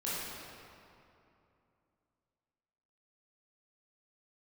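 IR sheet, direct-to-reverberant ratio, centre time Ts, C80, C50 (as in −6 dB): −9.5 dB, 167 ms, −1.5 dB, −4.0 dB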